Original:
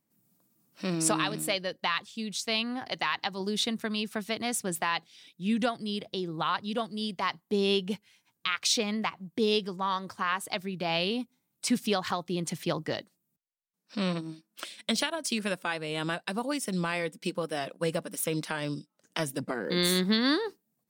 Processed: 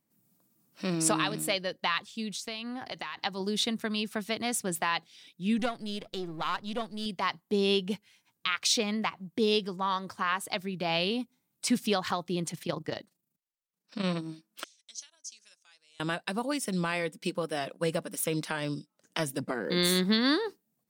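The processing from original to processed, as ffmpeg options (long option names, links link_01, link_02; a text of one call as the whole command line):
ffmpeg -i in.wav -filter_complex "[0:a]asettb=1/sr,asplit=3[link_01][link_02][link_03];[link_01]atrim=end=2.304[link_04];[link_02]atrim=start=2.3:end=3.17,asetpts=PTS-STARTPTS,afade=type=in:duration=0.004:curve=qsin,afade=type=out:start_time=0.866:duration=0.004:curve=qsin,acompressor=threshold=-33dB:ratio=6:attack=3.2:release=140:knee=1:detection=peak[link_05];[link_03]atrim=start=3.166[link_06];[link_04][link_05]acrossfade=duration=0.004:curve1=hsin:curve2=qsin[link_07];[link_07][link_06]acrossfade=duration=0.004:curve1=qsin:curve2=hsin,asettb=1/sr,asplit=3[link_08][link_09][link_10];[link_08]atrim=end=5.594[link_11];[link_09]atrim=start=5.59:end=7.06,asetpts=PTS-STARTPTS,afade=type=in:duration=0.004:curve=qsin,afade=type=out:start_time=1.466:duration=0.004:curve=qsin,aeval=exprs='if(lt(val(0),0),0.447*val(0),val(0))':channel_layout=same[link_12];[link_10]atrim=start=7.056[link_13];[link_11][link_12]acrossfade=duration=0.004:curve1=hsin:curve2=qsin[link_14];[link_14][link_13]acrossfade=duration=0.004:curve1=qsin:curve2=hsin,asplit=3[link_15][link_16][link_17];[link_15]afade=type=out:start_time=12.48:duration=0.02[link_18];[link_16]tremolo=f=26:d=0.71,afade=type=in:start_time=12.48:duration=0.02,afade=type=out:start_time=14.03:duration=0.02[link_19];[link_17]afade=type=in:start_time=14.03:duration=0.02[link_20];[link_18][link_19][link_20]amix=inputs=3:normalize=0,asettb=1/sr,asplit=3[link_21][link_22][link_23];[link_21]atrim=end=14.644[link_24];[link_22]atrim=start=14.64:end=16,asetpts=PTS-STARTPTS,afade=type=in:duration=0.004:curve=qsin,afade=type=out:start_time=1.356:duration=0.004:curve=qsin,bandpass=frequency=6200:width_type=q:width=8.5[link_25];[link_23]atrim=start=15.996[link_26];[link_24][link_25]acrossfade=duration=0.004:curve1=hsin:curve2=qsin[link_27];[link_27][link_26]acrossfade=duration=0.004:curve1=qsin:curve2=hsin" out.wav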